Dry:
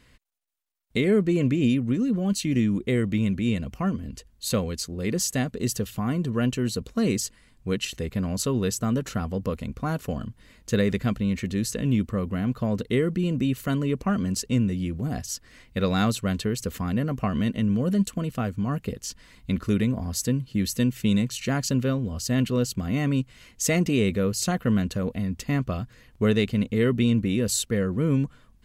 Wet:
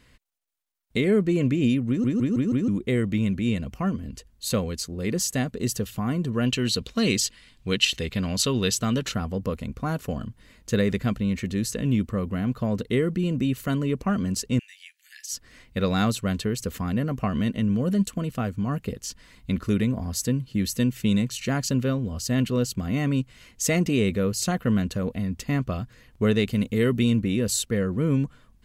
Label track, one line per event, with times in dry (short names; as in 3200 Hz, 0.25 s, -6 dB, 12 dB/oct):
1.880000	1.880000	stutter in place 0.16 s, 5 plays
6.460000	9.120000	bell 3400 Hz +11.5 dB 1.6 oct
14.590000	15.330000	Chebyshev high-pass 1700 Hz, order 6
26.470000	27.170000	high shelf 6900 Hz +9 dB